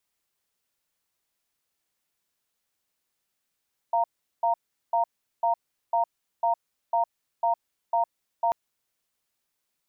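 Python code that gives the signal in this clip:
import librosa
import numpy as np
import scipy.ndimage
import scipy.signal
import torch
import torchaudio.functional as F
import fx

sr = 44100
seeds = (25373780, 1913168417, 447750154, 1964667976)

y = fx.cadence(sr, length_s=4.59, low_hz=691.0, high_hz=928.0, on_s=0.11, off_s=0.39, level_db=-23.0)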